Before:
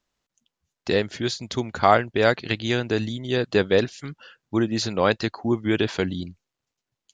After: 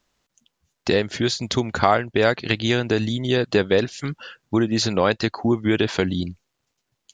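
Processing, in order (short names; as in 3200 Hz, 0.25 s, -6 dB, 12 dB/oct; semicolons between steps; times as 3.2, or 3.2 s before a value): compressor 2:1, threshold -28 dBFS, peak gain reduction 10 dB; gain +8 dB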